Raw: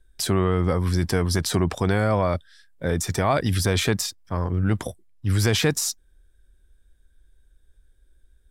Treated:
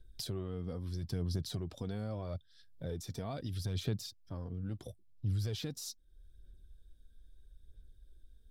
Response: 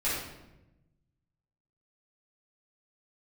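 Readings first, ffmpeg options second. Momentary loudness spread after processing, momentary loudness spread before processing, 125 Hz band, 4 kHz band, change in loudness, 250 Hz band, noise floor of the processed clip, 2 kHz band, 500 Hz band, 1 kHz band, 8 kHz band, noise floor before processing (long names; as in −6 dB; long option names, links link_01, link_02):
9 LU, 8 LU, −14.0 dB, −16.5 dB, −16.5 dB, −16.5 dB, −64 dBFS, −27.0 dB, −19.5 dB, −24.5 dB, −20.5 dB, −60 dBFS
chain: -af "equalizer=frequency=125:width_type=o:width=1:gain=7,equalizer=frequency=1000:width_type=o:width=1:gain=-7,equalizer=frequency=2000:width_type=o:width=1:gain=-10,equalizer=frequency=4000:width_type=o:width=1:gain=6,equalizer=frequency=8000:width_type=o:width=1:gain=-7,acompressor=threshold=-46dB:ratio=2,aphaser=in_gain=1:out_gain=1:delay=4.4:decay=0.4:speed=0.77:type=sinusoidal,volume=-3.5dB"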